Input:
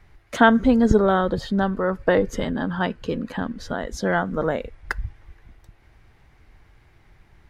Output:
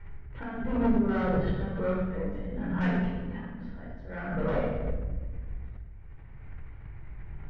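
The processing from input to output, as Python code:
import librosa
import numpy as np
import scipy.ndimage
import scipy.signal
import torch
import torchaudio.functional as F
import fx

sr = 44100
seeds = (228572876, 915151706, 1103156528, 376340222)

y = scipy.signal.sosfilt(scipy.signal.butter(4, 2600.0, 'lowpass', fs=sr, output='sos'), x)
y = fx.low_shelf(y, sr, hz=160.0, db=8.5)
y = fx.auto_swell(y, sr, attack_ms=709.0)
y = fx.comb_fb(y, sr, f0_hz=200.0, decay_s=0.96, harmonics='all', damping=0.0, mix_pct=60)
y = fx.tube_stage(y, sr, drive_db=32.0, bias=0.45)
y = fx.room_shoebox(y, sr, seeds[0], volume_m3=950.0, walls='mixed', distance_m=4.6)
y = fx.pre_swell(y, sr, db_per_s=52.0)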